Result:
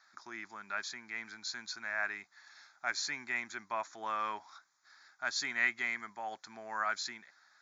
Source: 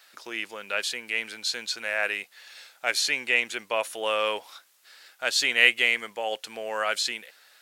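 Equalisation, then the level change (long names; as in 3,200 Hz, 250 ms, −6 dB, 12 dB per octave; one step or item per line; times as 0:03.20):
linear-phase brick-wall low-pass 7,300 Hz
high-shelf EQ 5,100 Hz −5 dB
phaser with its sweep stopped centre 1,200 Hz, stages 4
−3.5 dB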